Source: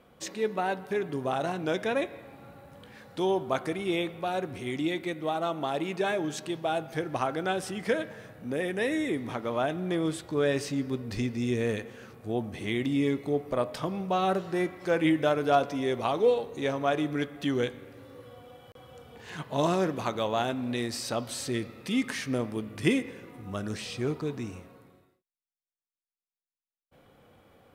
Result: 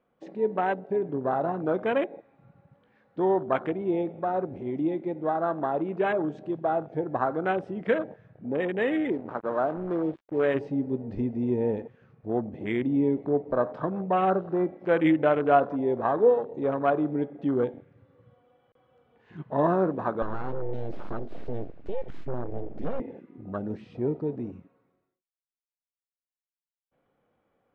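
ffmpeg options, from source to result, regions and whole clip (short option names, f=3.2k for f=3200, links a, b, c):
-filter_complex "[0:a]asettb=1/sr,asplit=3[a][b][c];[a]atrim=end=9.124[d];[b]atrim=start=9.12:end=10.55,asetpts=PTS-STARTPTS,afade=t=in:d=0.004:c=qsin,afade=t=out:st=1.426:d=0.004:c=qsin,lowshelf=f=180:g=-9,adynamicsmooth=sensitivity=7.5:basefreq=1.8k,acrusher=bits=5:mix=0:aa=0.5[e];[c]atrim=start=10.546[f];[d][e]acrossfade=d=0.004:c1=hsin:c2=qsin[g];[g][f]acrossfade=d=0.004:c1=qsin:c2=hsin,asettb=1/sr,asplit=3[h][i][j];[h]atrim=end=20.224[k];[i]atrim=start=20.22:end=23,asetpts=PTS-STARTPTS,afade=t=in:d=0.004:c=qsin,afade=t=out:st=2.776:d=0.004:c=qsin,bass=f=250:g=7,treble=f=4k:g=6,acompressor=threshold=-26dB:ratio=4:attack=3.2:release=140:knee=1:detection=peak,aeval=exprs='abs(val(0))':c=same[l];[j]atrim=start=22.996[m];[k][l]acrossfade=d=0.004:c1=hsin:c2=qsin[n];[n][m]acrossfade=d=0.004:c1=qsin:c2=hsin,lowpass=2.2k,afwtdn=0.0178,equalizer=f=80:t=o:w=1.4:g=-8,volume=3.5dB"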